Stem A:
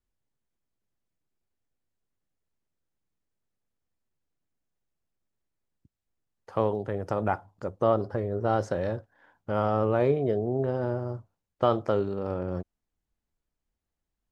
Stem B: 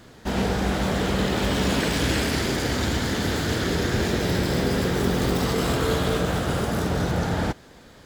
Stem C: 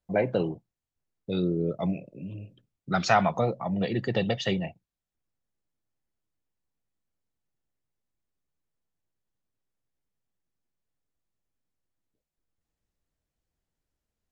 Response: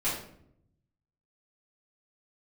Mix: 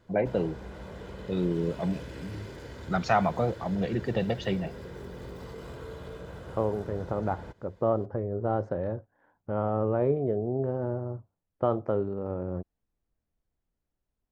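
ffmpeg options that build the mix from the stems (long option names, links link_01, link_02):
-filter_complex "[0:a]lowpass=frequency=1200:poles=1,volume=-1dB[link_01];[1:a]aecho=1:1:2:0.42,acompressor=threshold=-28dB:ratio=2,volume=-13.5dB[link_02];[2:a]volume=-1dB[link_03];[link_01][link_02][link_03]amix=inputs=3:normalize=0,highshelf=frequency=2500:gain=-10"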